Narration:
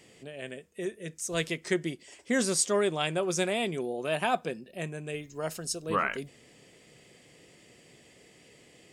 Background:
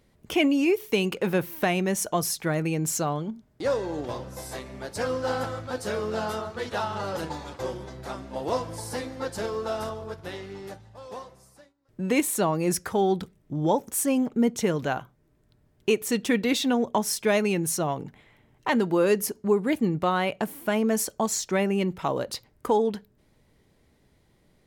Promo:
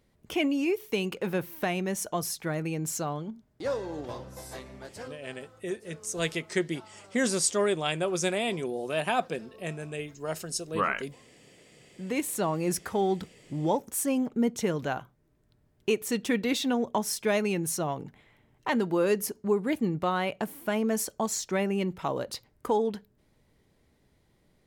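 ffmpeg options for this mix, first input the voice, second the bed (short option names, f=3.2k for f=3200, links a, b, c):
-filter_complex "[0:a]adelay=4850,volume=0.5dB[a];[1:a]volume=14.5dB,afade=t=out:st=4.7:d=0.48:silence=0.125893,afade=t=in:st=11.49:d=1.05:silence=0.105925[b];[a][b]amix=inputs=2:normalize=0"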